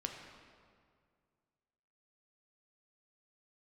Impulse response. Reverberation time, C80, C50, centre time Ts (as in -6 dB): 2.1 s, 5.5 dB, 4.0 dB, 57 ms